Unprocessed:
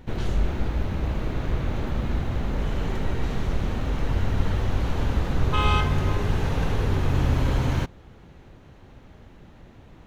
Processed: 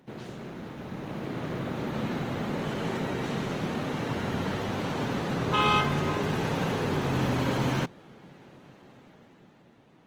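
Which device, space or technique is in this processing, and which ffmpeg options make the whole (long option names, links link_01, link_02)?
video call: -af "highpass=frequency=140:width=0.5412,highpass=frequency=140:width=1.3066,dynaudnorm=framelen=210:gausssize=11:maxgain=8dB,volume=-6.5dB" -ar 48000 -c:a libopus -b:a 20k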